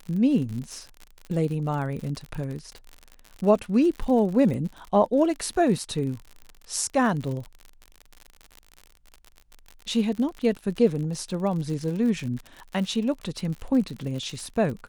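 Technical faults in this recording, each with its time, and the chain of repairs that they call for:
surface crackle 60 per second −32 dBFS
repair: click removal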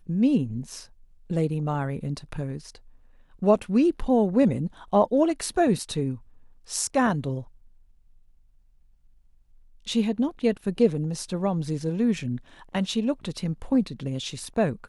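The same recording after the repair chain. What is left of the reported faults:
none of them is left

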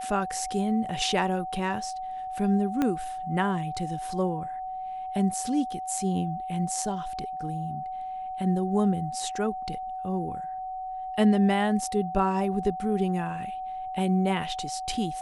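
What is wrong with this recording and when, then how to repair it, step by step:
whistle 750 Hz −32 dBFS
0:02.82: click −14 dBFS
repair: click removal
notch filter 750 Hz, Q 30

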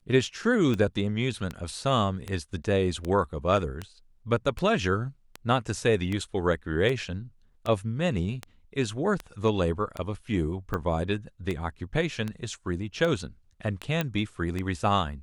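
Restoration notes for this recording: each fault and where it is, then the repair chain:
scratch tick 78 rpm −18 dBFS
0:14.01: click −13 dBFS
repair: click removal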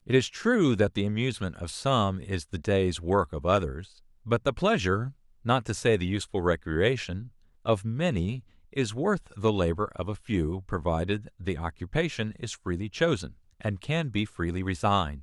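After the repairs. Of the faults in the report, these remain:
none of them is left

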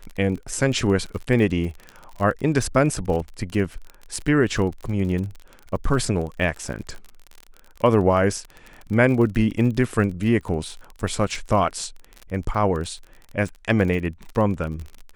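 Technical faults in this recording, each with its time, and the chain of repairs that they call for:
surface crackle 35 per second −29 dBFS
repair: click removal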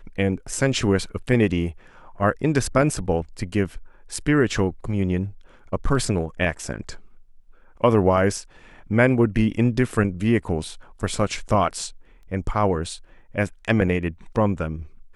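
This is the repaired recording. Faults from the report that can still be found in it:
none of them is left

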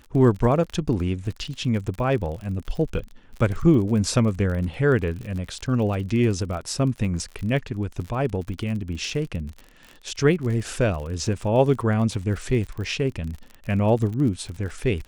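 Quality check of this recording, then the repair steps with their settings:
surface crackle 44 per second −31 dBFS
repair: click removal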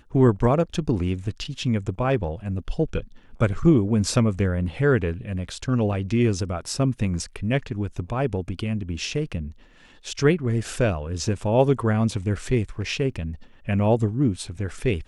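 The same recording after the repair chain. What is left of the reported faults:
none of them is left

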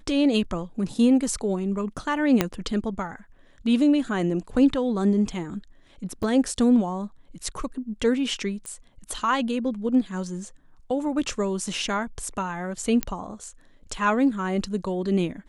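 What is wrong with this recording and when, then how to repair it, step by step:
0:02.41: click −5 dBFS
0:06.23: drop-out 3.9 ms
0:08.66: click −22 dBFS
0:13.03: click −9 dBFS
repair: click removal
repair the gap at 0:06.23, 3.9 ms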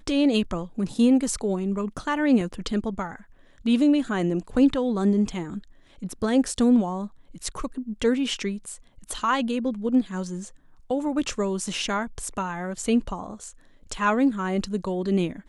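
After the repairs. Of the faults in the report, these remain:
0:02.41: click

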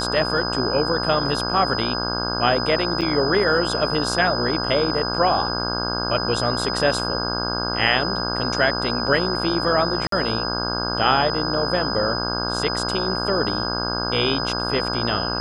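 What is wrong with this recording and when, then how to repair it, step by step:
mains buzz 60 Hz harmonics 27 −27 dBFS
whistle 5,000 Hz −26 dBFS
0:03.01–0:03.02: drop-out 7.2 ms
0:10.07–0:10.12: drop-out 53 ms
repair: hum removal 60 Hz, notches 27
notch filter 5,000 Hz, Q 30
repair the gap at 0:03.01, 7.2 ms
repair the gap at 0:10.07, 53 ms

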